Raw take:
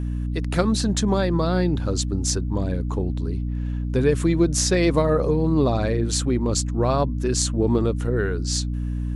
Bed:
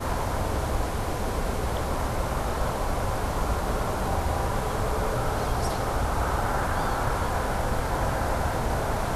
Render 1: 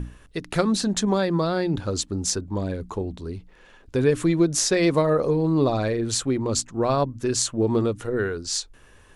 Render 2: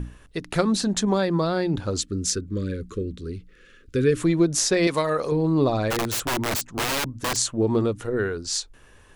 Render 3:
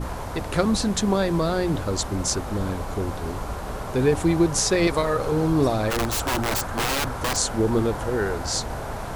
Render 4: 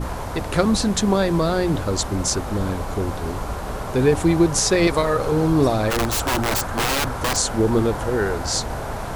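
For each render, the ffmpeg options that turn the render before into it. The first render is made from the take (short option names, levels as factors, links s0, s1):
-af "bandreject=f=60:t=h:w=6,bandreject=f=120:t=h:w=6,bandreject=f=180:t=h:w=6,bandreject=f=240:t=h:w=6,bandreject=f=300:t=h:w=6"
-filter_complex "[0:a]asettb=1/sr,asplit=3[s0][s1][s2];[s0]atrim=end=2.004[s3];[s1]atrim=start=2:end=4.17,asetpts=PTS-STARTPTS,afade=t=in:d=0.004:c=qsin,afade=t=out:st=2.166:d=0.004:c=qsin,asuperstop=centerf=800:order=8:qfactor=1.2[s4];[s2]atrim=start=4.166[s5];[s3][s4]acrossfade=d=0.004:c1=hsin:c2=qsin[s6];[s6][s5]acrossfade=d=0.004:c1=qsin:c2=hsin,asettb=1/sr,asplit=3[s7][s8][s9];[s7]atrim=end=4.874[s10];[s8]atrim=start=4.87:end=5.32,asetpts=PTS-STARTPTS,afade=t=in:d=0.004:c=qsin,afade=t=out:st=0.446:d=0.004:c=qsin,tiltshelf=f=970:g=-7.5[s11];[s9]atrim=start=5.316[s12];[s10][s11]acrossfade=d=0.004:c1=hsin:c2=qsin[s13];[s13][s12]acrossfade=d=0.004:c1=qsin:c2=hsin,asplit=3[s14][s15][s16];[s14]afade=t=out:st=5.9:d=0.02[s17];[s15]aeval=exprs='(mod(10*val(0)+1,2)-1)/10':c=same,afade=t=in:st=5.9:d=0.02,afade=t=out:st=7.35:d=0.02[s18];[s16]afade=t=in:st=7.35:d=0.02[s19];[s17][s18][s19]amix=inputs=3:normalize=0"
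-filter_complex "[1:a]volume=0.596[s0];[0:a][s0]amix=inputs=2:normalize=0"
-af "volume=1.41,alimiter=limit=0.708:level=0:latency=1"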